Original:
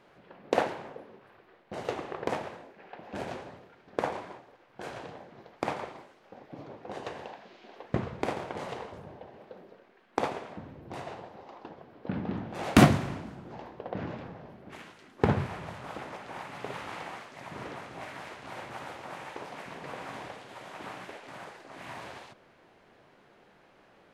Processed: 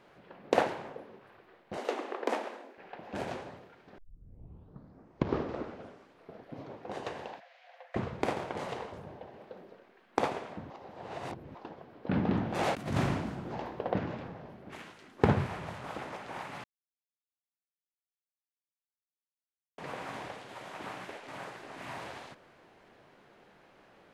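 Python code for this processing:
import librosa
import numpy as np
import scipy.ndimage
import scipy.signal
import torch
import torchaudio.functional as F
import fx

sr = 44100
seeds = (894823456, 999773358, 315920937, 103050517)

y = fx.steep_highpass(x, sr, hz=220.0, slope=72, at=(1.77, 2.78))
y = fx.cheby_ripple_highpass(y, sr, hz=500.0, ripple_db=9, at=(7.39, 7.95), fade=0.02)
y = fx.over_compress(y, sr, threshold_db=-31.0, ratio=-1.0, at=(12.11, 13.99))
y = fx.echo_throw(y, sr, start_s=20.75, length_s=1.05, ms=540, feedback_pct=15, wet_db=-7.0)
y = fx.edit(y, sr, fx.tape_start(start_s=3.98, length_s=2.74),
    fx.reverse_span(start_s=10.7, length_s=0.85),
    fx.silence(start_s=16.64, length_s=3.14), tone=tone)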